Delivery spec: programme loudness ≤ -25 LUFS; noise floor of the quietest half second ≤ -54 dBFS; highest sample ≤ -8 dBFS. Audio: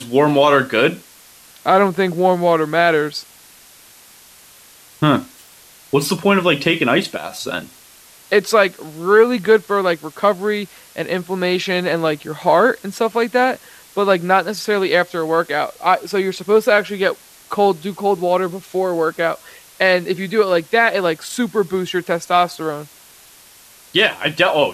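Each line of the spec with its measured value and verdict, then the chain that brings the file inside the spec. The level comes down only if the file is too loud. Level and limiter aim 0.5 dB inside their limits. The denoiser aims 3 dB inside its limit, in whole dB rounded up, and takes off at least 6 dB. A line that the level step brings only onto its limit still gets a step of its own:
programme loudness -17.5 LUFS: fail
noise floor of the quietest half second -46 dBFS: fail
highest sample -2.5 dBFS: fail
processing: noise reduction 6 dB, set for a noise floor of -46 dBFS; trim -8 dB

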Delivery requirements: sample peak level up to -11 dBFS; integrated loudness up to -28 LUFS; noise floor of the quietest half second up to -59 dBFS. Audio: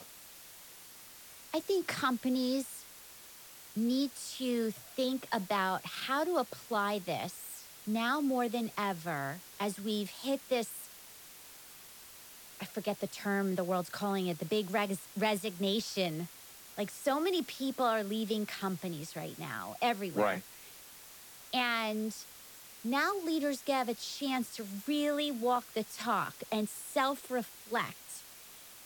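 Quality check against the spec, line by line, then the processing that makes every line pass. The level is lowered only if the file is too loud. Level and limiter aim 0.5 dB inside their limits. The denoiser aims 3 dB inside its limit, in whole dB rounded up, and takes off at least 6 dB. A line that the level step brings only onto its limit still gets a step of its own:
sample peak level -19.0 dBFS: pass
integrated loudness -34.5 LUFS: pass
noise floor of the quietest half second -53 dBFS: fail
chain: noise reduction 9 dB, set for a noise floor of -53 dBFS

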